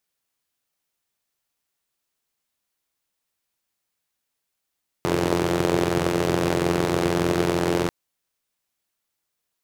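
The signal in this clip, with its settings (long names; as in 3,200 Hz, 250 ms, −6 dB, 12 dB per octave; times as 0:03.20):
pulse-train model of a four-cylinder engine, steady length 2.84 s, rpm 2,600, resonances 150/340 Hz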